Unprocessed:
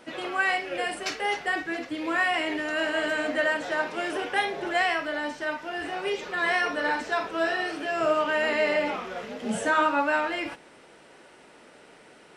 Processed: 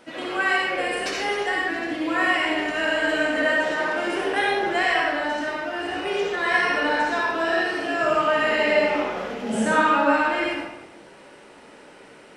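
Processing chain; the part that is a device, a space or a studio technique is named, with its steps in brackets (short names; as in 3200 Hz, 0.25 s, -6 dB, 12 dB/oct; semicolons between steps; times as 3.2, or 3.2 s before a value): bathroom (reverb RT60 1.0 s, pre-delay 59 ms, DRR -3 dB)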